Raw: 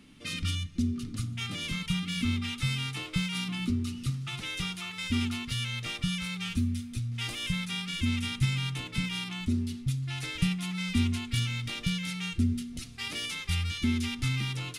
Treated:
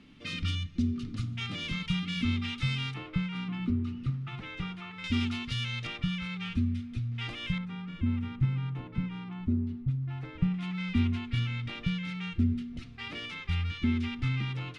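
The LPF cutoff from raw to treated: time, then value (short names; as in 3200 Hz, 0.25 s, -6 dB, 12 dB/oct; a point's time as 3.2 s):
4200 Hz
from 2.94 s 1800 Hz
from 5.04 s 4600 Hz
from 5.87 s 2700 Hz
from 7.58 s 1100 Hz
from 10.54 s 2400 Hz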